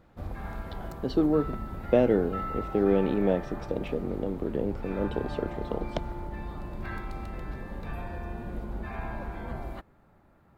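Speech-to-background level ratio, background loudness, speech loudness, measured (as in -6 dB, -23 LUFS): 9.5 dB, -38.5 LUFS, -29.0 LUFS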